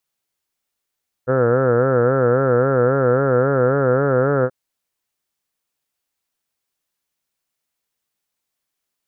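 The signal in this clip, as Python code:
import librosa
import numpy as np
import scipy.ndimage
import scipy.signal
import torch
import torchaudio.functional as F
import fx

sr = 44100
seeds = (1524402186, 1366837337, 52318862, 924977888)

y = fx.vowel(sr, seeds[0], length_s=3.23, word='heard', hz=124.0, glide_st=1.5, vibrato_hz=3.7, vibrato_st=1.15)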